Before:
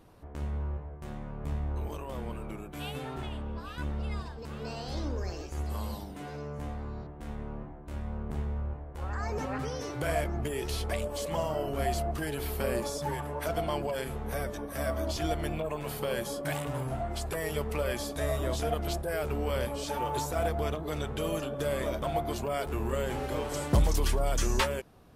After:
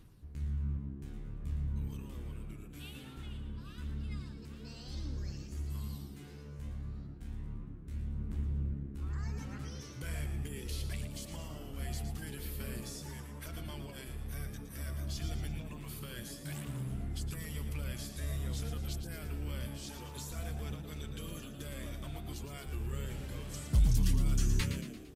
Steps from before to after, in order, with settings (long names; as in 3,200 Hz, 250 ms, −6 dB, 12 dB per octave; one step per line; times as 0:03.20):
guitar amp tone stack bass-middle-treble 6-0-2
reversed playback
upward compression, threshold −55 dBFS
reversed playback
phase shifter 0.12 Hz, delay 4.8 ms, feedback 28%
echo with shifted repeats 114 ms, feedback 51%, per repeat +68 Hz, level −9 dB
level +8 dB